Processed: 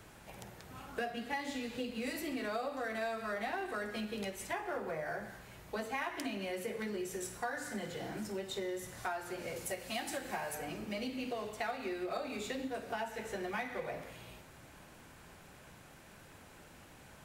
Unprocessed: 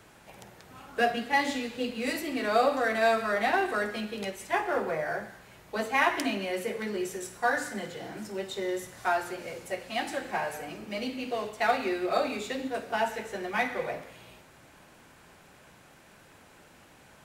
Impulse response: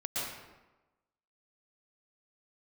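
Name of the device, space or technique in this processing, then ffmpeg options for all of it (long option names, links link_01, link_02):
ASMR close-microphone chain: -filter_complex "[0:a]asettb=1/sr,asplit=3[link_01][link_02][link_03];[link_01]atrim=end=9.564[link_04];[link_02]atrim=start=9.56:end=10.55,asetpts=PTS-STARTPTS,afade=type=in:duration=0.004:curve=qsin,afade=type=out:start_time=0.986:duration=0.004:curve=qsin,highshelf=frequency=5600:gain=9[link_05];[link_03]atrim=start=10.546[link_06];[link_04][link_05]acrossfade=duration=0.004:curve1=hsin:curve2=qsin[link_07];[link_07][link_06]acrossfade=duration=0.004:curve1=qsin:curve2=hsin,lowshelf=frequency=130:gain=7.5,acompressor=threshold=-34dB:ratio=5,highshelf=frequency=9700:gain=4,volume=-2dB"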